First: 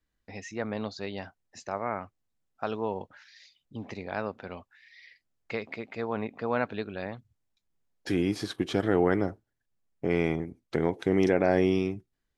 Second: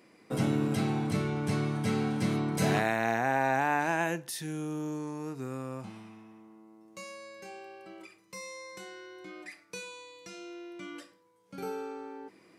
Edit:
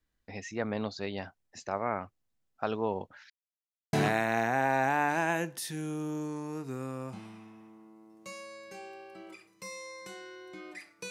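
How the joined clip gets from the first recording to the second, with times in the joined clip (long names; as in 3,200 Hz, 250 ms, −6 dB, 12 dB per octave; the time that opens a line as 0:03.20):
first
0:03.30–0:03.93: silence
0:03.93: continue with second from 0:02.64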